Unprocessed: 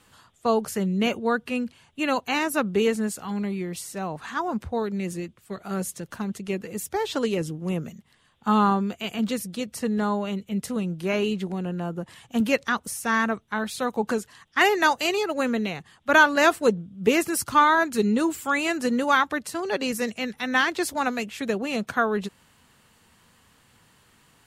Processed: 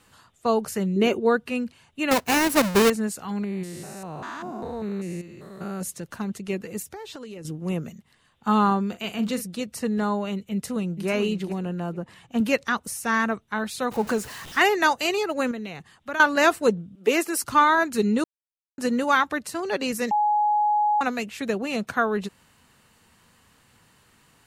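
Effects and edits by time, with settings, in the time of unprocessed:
0:00.96–0:01.37: parametric band 380 Hz +12.5 dB 0.52 octaves
0:02.11–0:02.90: each half-wave held at its own peak
0:03.44–0:05.83: spectrum averaged block by block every 200 ms
0:06.82–0:07.45: downward compressor 10 to 1, threshold −35 dBFS
0:08.88–0:09.44: double-tracking delay 43 ms −12 dB
0:10.53–0:11.08: delay throw 440 ms, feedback 20%, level −8 dB
0:11.92–0:12.41: high-shelf EQ 4,600 Hz −8.5 dB
0:13.91–0:14.60: converter with a step at zero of −34.5 dBFS
0:15.51–0:16.20: downward compressor 2.5 to 1, threshold −33 dBFS
0:16.95–0:17.44: high-pass filter 290 Hz 24 dB per octave
0:18.24–0:18.78: silence
0:20.11–0:21.01: beep over 838 Hz −18 dBFS
whole clip: notch filter 3,300 Hz, Q 20

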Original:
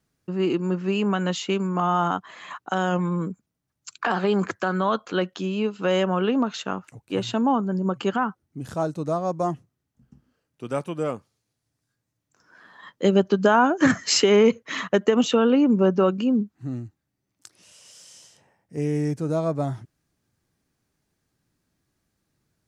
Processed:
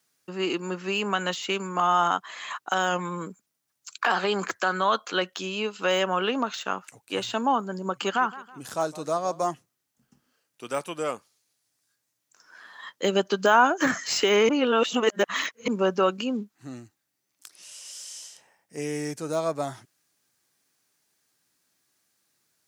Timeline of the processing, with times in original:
0:07.86–0:09.45: feedback echo with a swinging delay time 161 ms, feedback 39%, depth 114 cents, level −18 dB
0:14.49–0:15.68: reverse
whole clip: high-pass filter 890 Hz 6 dB per octave; high-shelf EQ 3,900 Hz +7 dB; de-essing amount 85%; level +3.5 dB

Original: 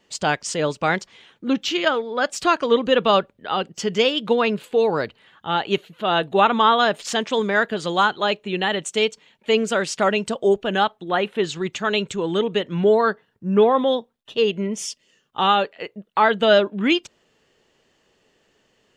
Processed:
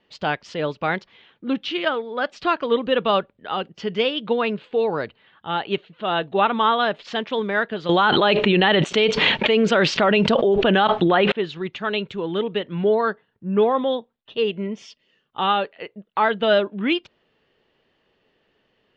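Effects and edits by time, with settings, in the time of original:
0:07.89–0:11.32: envelope flattener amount 100%
whole clip: low-pass filter 4,000 Hz 24 dB per octave; level −2.5 dB

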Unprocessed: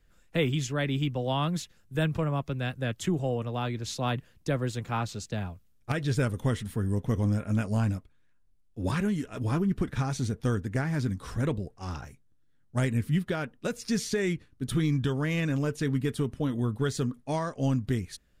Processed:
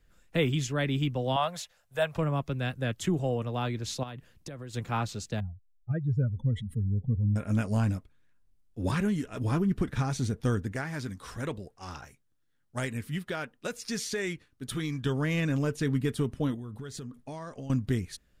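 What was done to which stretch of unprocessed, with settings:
0:01.36–0:02.17: low shelf with overshoot 440 Hz −12 dB, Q 3
0:04.03–0:04.74: downward compressor 10 to 1, threshold −37 dBFS
0:05.40–0:07.36: expanding power law on the bin magnitudes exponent 2.4
0:10.72–0:15.06: low-shelf EQ 390 Hz −9.5 dB
0:16.54–0:17.70: downward compressor 10 to 1, threshold −36 dBFS

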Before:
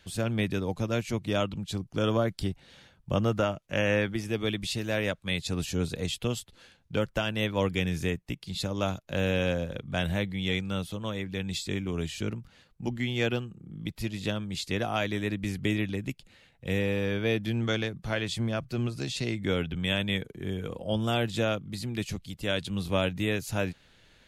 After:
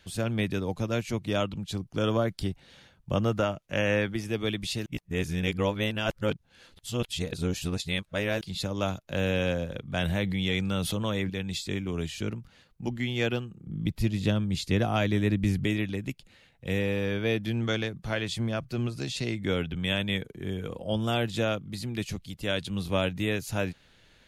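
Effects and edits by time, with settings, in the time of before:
0:04.86–0:08.41: reverse
0:10.01–0:11.30: envelope flattener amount 70%
0:13.67–0:15.65: low-shelf EQ 310 Hz +9 dB
whole clip: notch filter 7,700 Hz, Q 30

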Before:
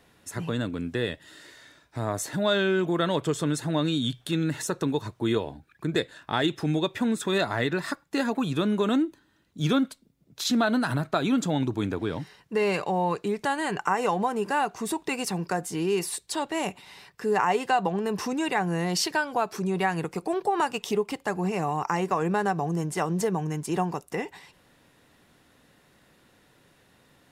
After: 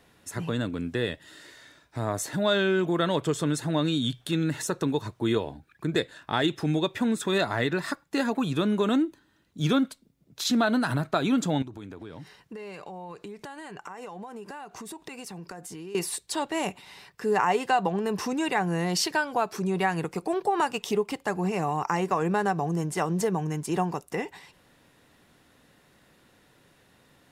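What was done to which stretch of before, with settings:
0:11.62–0:15.95: downward compressor 8 to 1, threshold −37 dBFS

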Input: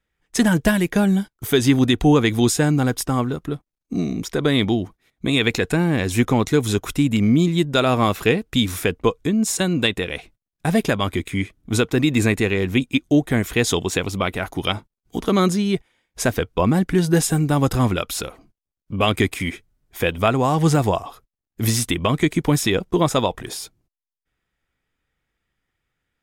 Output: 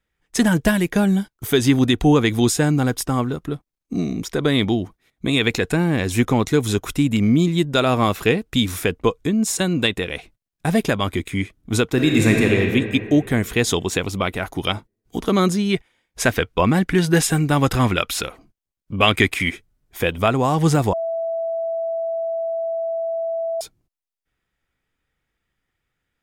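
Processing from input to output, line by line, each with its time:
0:11.92–0:12.55: thrown reverb, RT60 2.4 s, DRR 0 dB
0:15.68–0:19.51: dynamic equaliser 2,200 Hz, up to +7 dB, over −38 dBFS, Q 0.71
0:20.93–0:23.61: beep over 661 Hz −21 dBFS

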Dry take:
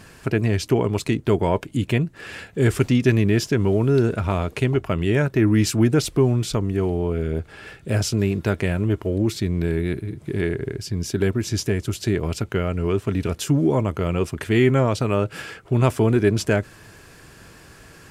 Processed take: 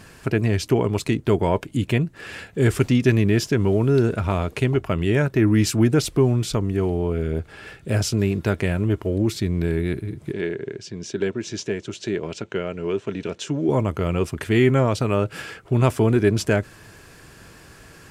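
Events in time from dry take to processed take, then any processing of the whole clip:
0:10.32–0:13.69: loudspeaker in its box 220–6,600 Hz, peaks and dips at 270 Hz −5 dB, 760 Hz −4 dB, 1,200 Hz −6 dB, 2,000 Hz −3 dB, 4,800 Hz −6 dB

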